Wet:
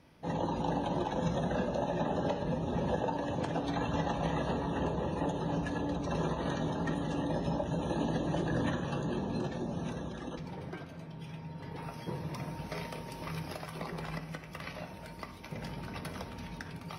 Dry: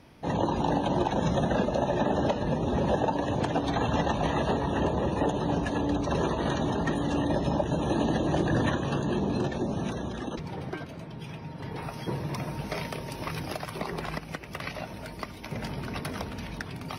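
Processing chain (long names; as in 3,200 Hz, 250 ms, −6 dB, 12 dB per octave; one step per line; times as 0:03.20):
on a send: convolution reverb RT60 0.85 s, pre-delay 3 ms, DRR 6 dB
on the sum: level −7.5 dB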